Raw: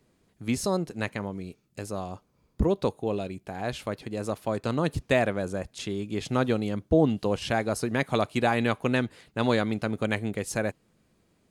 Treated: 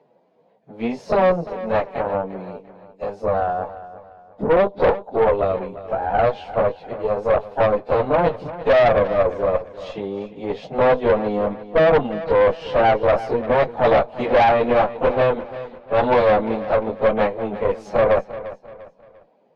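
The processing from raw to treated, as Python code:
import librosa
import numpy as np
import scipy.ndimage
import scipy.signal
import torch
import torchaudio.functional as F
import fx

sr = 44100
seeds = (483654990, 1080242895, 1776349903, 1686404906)

p1 = scipy.signal.sosfilt(scipy.signal.butter(4, 150.0, 'highpass', fs=sr, output='sos'), x)
p2 = fx.band_shelf(p1, sr, hz=660.0, db=15.0, octaves=1.3)
p3 = fx.stretch_vocoder_free(p2, sr, factor=1.7)
p4 = fx.tube_stage(p3, sr, drive_db=19.0, bias=0.7)
p5 = fx.air_absorb(p4, sr, metres=250.0)
p6 = p5 + fx.echo_feedback(p5, sr, ms=347, feedback_pct=36, wet_db=-15, dry=0)
y = p6 * librosa.db_to_amplitude(8.5)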